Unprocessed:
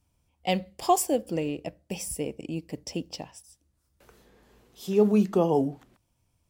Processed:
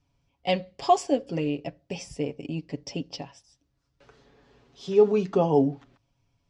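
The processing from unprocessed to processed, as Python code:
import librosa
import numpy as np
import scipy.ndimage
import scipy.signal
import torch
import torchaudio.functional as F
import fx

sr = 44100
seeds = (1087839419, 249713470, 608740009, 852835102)

y = scipy.signal.sosfilt(scipy.signal.butter(4, 5800.0, 'lowpass', fs=sr, output='sos'), x)
y = y + 0.62 * np.pad(y, (int(7.2 * sr / 1000.0), 0))[:len(y)]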